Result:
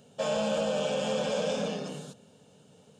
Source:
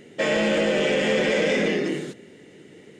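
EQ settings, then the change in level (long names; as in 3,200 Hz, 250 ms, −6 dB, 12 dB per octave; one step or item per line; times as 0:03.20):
high-pass filter 79 Hz
phaser with its sweep stopped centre 830 Hz, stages 4
−2.5 dB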